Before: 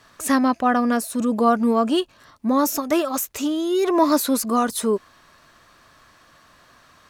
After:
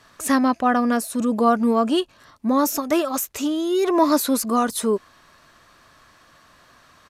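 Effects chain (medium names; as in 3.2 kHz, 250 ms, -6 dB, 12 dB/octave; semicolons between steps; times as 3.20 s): resampled via 32 kHz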